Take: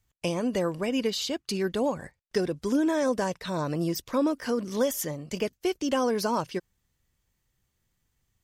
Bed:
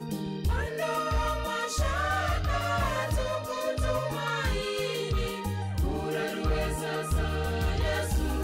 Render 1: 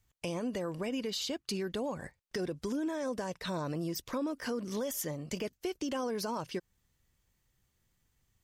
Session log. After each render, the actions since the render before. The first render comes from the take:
brickwall limiter −21.5 dBFS, peak gain reduction 8 dB
downward compressor 2 to 1, threshold −36 dBFS, peak gain reduction 6.5 dB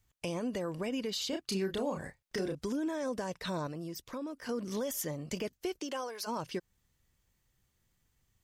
0:01.29–0:02.55: double-tracking delay 31 ms −5 dB
0:03.67–0:04.49: clip gain −5.5 dB
0:05.79–0:06.26: high-pass filter 290 Hz → 990 Hz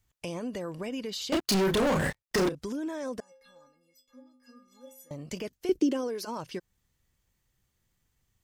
0:01.32–0:02.49: leveller curve on the samples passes 5
0:03.20–0:05.11: stiff-string resonator 250 Hz, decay 0.66 s, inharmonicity 0.03
0:05.69–0:06.25: low shelf with overshoot 520 Hz +13.5 dB, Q 1.5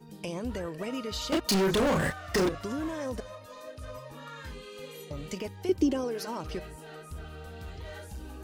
mix in bed −14 dB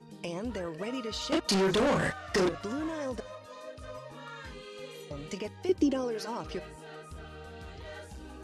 Bessel low-pass filter 8,100 Hz, order 8
low-shelf EQ 110 Hz −7.5 dB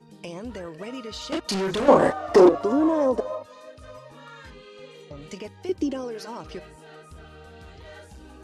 0:01.88–0:03.43: flat-topped bell 530 Hz +14.5 dB 2.5 octaves
0:04.50–0:05.22: high-frequency loss of the air 69 metres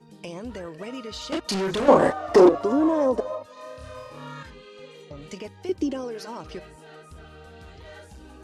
0:03.54–0:04.43: flutter between parallel walls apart 4.7 metres, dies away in 0.82 s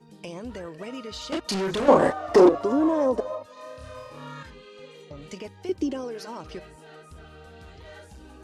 level −1 dB

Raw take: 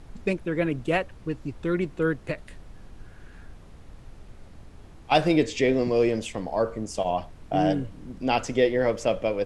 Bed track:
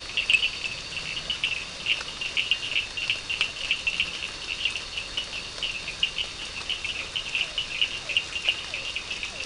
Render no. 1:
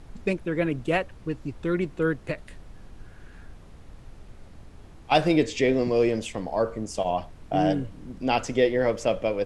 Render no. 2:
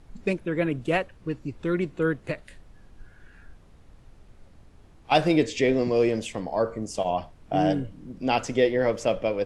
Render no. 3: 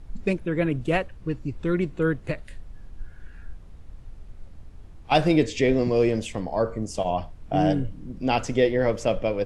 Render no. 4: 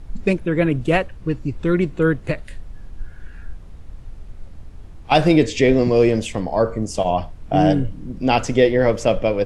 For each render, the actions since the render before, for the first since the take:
no processing that can be heard
noise reduction from a noise print 6 dB
low-shelf EQ 110 Hz +11.5 dB
level +6 dB; brickwall limiter −3 dBFS, peak gain reduction 2 dB

